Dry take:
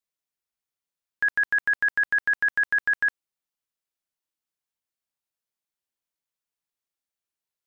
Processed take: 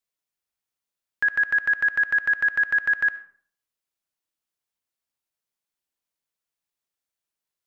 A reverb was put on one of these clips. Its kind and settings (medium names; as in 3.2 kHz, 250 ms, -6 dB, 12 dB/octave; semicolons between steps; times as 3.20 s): algorithmic reverb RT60 0.52 s, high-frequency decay 0.6×, pre-delay 30 ms, DRR 15 dB; trim +1.5 dB